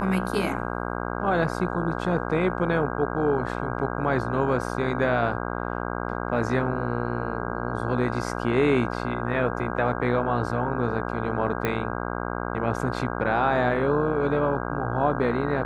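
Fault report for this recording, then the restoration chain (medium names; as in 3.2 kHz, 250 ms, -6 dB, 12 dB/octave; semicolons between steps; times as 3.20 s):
buzz 60 Hz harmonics 27 -30 dBFS
11.65 s: pop -12 dBFS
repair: de-click; de-hum 60 Hz, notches 27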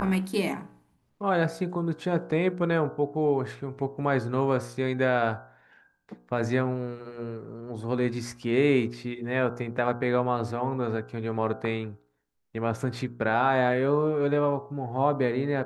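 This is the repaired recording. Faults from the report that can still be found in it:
nothing left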